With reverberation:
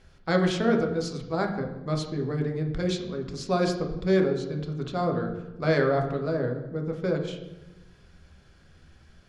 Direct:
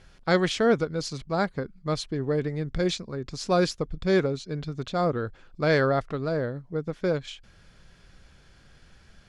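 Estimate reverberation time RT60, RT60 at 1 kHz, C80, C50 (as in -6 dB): 1.1 s, 0.95 s, 9.5 dB, 7.5 dB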